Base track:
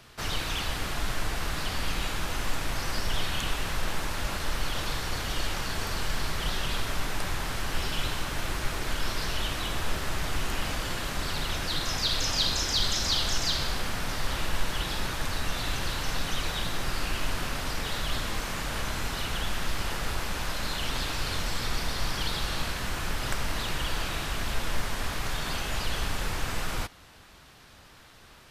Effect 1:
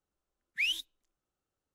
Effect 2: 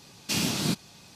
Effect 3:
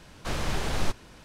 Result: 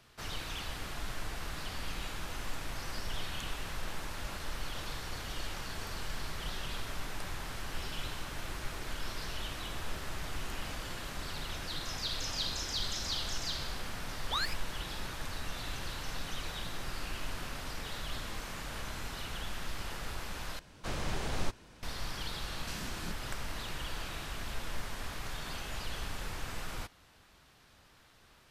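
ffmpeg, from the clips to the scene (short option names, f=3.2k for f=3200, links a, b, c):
-filter_complex "[0:a]volume=-9dB[a];[1:a]aeval=exprs='val(0)*sin(2*PI*1300*n/s)':c=same[b];[a]asplit=2[c][d];[c]atrim=end=20.594[e];[3:a]atrim=end=1.24,asetpts=PTS-STARTPTS,volume=-6dB[f];[d]atrim=start=21.826[g];[b]atrim=end=1.74,asetpts=PTS-STARTPTS,volume=-0.5dB,afade=t=in:d=0.004:c=hsin,afade=t=out:st=1.736:d=0.004:c=hsin,adelay=13730[h];[2:a]atrim=end=1.15,asetpts=PTS-STARTPTS,volume=-17.5dB,afade=t=in:d=0.004:c=hsin,afade=t=out:st=1.146:d=0.004:c=hsin,adelay=22380[i];[e][f]acrossfade=d=0.004:c1=hsin:c2=hsin[j];[j][g]acrossfade=d=0.004:c1=hsin:c2=hsin[k];[k][h][i]amix=inputs=3:normalize=0"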